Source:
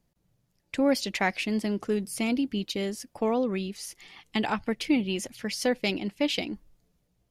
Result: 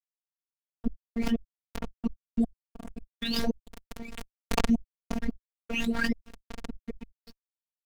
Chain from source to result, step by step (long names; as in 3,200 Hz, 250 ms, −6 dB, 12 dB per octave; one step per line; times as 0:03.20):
every frequency bin delayed by itself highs late, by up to 648 ms
change of speed 0.93×
gate with flip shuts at −24 dBFS, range −35 dB
harmonic and percussive parts rebalanced harmonic −8 dB
low-pass that shuts in the quiet parts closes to 890 Hz, open at −35 dBFS
on a send: feedback delay with all-pass diffusion 473 ms, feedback 51%, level −15 dB
on the sum: centre clipping without the shift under −46 dBFS
in parallel at +2.5 dB: downward compressor, threshold −47 dBFS, peak gain reduction 16.5 dB
on the sum: spectral tilt −4 dB per octave
phases set to zero 231 Hz
background raised ahead of every attack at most 32 dB per second